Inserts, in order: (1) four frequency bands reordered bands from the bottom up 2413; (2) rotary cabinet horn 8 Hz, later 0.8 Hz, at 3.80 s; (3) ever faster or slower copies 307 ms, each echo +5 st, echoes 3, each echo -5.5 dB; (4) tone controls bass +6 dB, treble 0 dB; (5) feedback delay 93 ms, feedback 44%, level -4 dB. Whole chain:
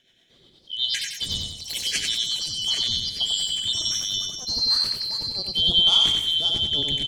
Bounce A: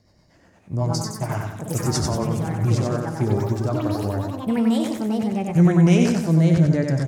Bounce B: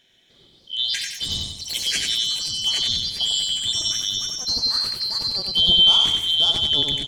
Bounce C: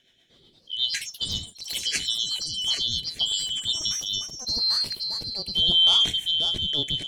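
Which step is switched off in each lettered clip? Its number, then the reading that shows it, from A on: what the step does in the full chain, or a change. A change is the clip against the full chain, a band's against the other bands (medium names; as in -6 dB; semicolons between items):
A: 1, 4 kHz band -35.5 dB; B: 2, 1 kHz band +2.0 dB; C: 5, echo-to-direct -3.0 dB to none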